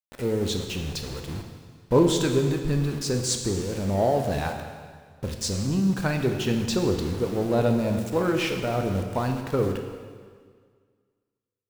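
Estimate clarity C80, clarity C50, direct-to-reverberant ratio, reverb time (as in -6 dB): 7.0 dB, 6.0 dB, 4.0 dB, 1.8 s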